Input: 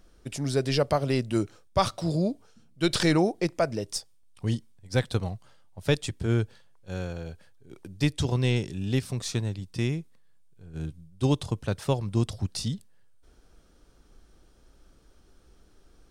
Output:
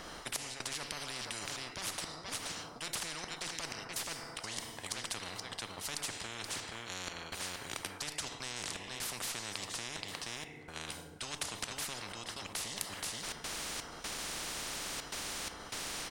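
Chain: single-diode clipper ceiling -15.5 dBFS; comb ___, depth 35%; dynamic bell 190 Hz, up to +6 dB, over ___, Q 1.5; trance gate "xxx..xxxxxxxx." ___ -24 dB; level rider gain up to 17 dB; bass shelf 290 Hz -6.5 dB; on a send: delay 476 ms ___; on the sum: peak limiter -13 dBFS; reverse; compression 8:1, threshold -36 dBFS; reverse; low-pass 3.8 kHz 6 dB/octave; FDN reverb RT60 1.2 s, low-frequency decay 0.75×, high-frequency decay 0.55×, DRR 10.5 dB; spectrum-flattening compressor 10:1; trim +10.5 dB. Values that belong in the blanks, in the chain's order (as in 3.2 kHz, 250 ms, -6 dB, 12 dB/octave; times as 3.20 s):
1 ms, -39 dBFS, 125 bpm, -20 dB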